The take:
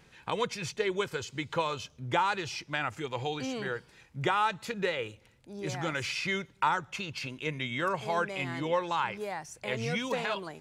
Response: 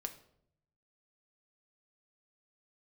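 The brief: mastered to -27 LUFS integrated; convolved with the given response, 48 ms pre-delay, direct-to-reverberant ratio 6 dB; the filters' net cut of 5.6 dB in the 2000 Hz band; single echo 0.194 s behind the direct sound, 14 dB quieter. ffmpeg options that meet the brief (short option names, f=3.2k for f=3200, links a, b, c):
-filter_complex "[0:a]equalizer=f=2k:t=o:g=-7.5,aecho=1:1:194:0.2,asplit=2[a][b];[1:a]atrim=start_sample=2205,adelay=48[c];[b][c]afir=irnorm=-1:irlink=0,volume=-4.5dB[d];[a][d]amix=inputs=2:normalize=0,volume=6dB"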